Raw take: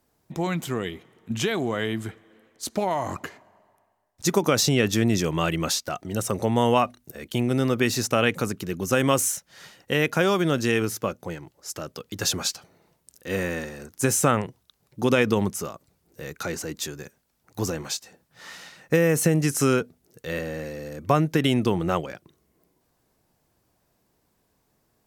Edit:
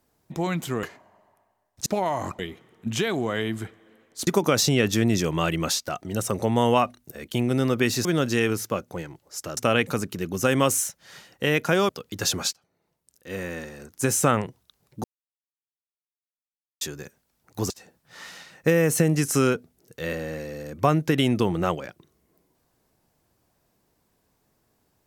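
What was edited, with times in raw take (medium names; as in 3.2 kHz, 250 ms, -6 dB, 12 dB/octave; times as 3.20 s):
0.83–2.71 s: swap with 3.24–4.27 s
10.37–11.89 s: move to 8.05 s
12.53–14.29 s: fade in, from -22 dB
15.04–16.81 s: mute
17.70–17.96 s: delete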